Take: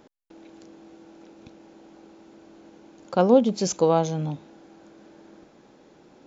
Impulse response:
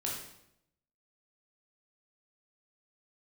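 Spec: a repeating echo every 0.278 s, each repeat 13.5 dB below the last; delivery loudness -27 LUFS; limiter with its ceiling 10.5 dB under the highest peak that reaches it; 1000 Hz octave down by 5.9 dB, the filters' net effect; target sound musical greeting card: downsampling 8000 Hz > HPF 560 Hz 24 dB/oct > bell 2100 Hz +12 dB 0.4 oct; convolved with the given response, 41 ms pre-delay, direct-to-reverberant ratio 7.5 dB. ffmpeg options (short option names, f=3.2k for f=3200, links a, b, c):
-filter_complex "[0:a]equalizer=f=1k:t=o:g=-8.5,alimiter=limit=-18.5dB:level=0:latency=1,aecho=1:1:278|556:0.211|0.0444,asplit=2[a][b];[1:a]atrim=start_sample=2205,adelay=41[c];[b][c]afir=irnorm=-1:irlink=0,volume=-10.5dB[d];[a][d]amix=inputs=2:normalize=0,aresample=8000,aresample=44100,highpass=f=560:w=0.5412,highpass=f=560:w=1.3066,equalizer=f=2.1k:t=o:w=0.4:g=12,volume=9dB"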